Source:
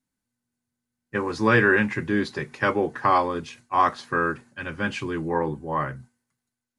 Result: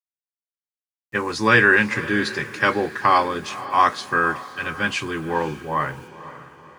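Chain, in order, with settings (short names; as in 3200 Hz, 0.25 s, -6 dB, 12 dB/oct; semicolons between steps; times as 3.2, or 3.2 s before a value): tilt shelf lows -5 dB, about 1300 Hz; bit-crush 10-bit; diffused feedback echo 0.514 s, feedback 44%, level -15 dB; gain +4.5 dB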